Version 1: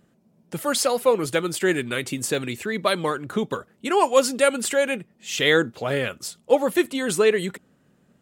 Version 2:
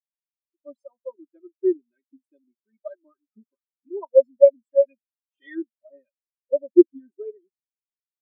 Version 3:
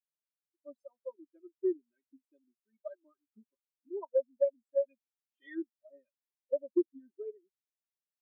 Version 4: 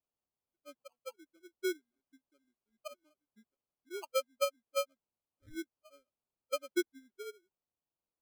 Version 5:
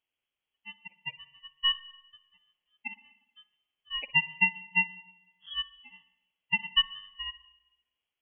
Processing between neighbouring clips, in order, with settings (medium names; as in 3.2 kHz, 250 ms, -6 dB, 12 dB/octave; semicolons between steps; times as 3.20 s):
comb 3.2 ms, depth 94%; spectral contrast expander 4:1
compression 4:1, threshold -19 dBFS, peak gain reduction 11.5 dB; trim -7 dB
sample-and-hold 24×; trim -4 dB
frequency inversion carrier 3.3 kHz; spring tank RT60 1 s, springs 50/59 ms, chirp 45 ms, DRR 15.5 dB; trim +7.5 dB